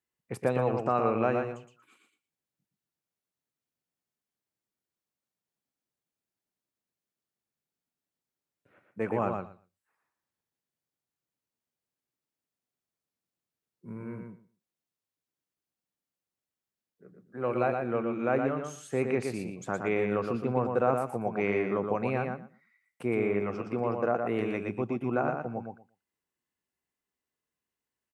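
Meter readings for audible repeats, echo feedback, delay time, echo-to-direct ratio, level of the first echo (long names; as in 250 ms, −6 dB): 2, 15%, 118 ms, −5.0 dB, −5.0 dB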